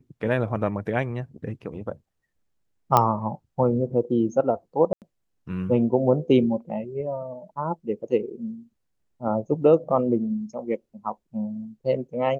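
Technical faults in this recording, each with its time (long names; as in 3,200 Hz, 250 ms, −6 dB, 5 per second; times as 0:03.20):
0:02.97: click −5 dBFS
0:04.93–0:05.02: drop-out 88 ms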